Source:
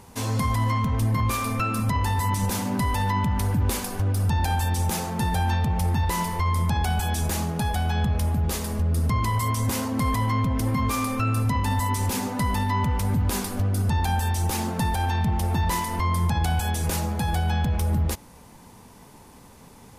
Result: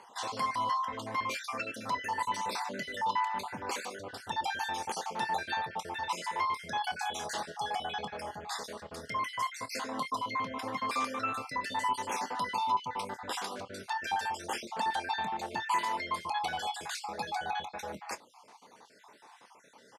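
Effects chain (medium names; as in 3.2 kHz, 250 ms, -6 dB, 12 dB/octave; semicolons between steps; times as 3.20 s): random holes in the spectrogram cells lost 42%; band-pass 580–5300 Hz; peaking EQ 2.5 kHz -2 dB; doubling 26 ms -14 dB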